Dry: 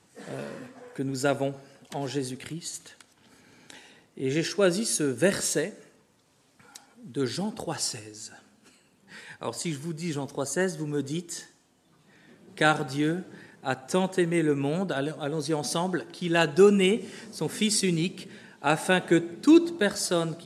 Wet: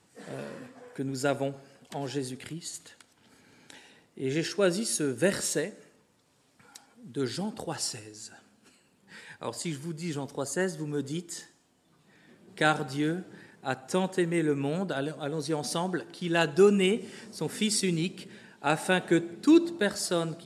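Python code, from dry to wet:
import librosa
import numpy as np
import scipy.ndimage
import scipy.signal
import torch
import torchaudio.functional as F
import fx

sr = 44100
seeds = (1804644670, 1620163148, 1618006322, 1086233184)

y = fx.notch(x, sr, hz=6200.0, q=26.0)
y = y * 10.0 ** (-2.5 / 20.0)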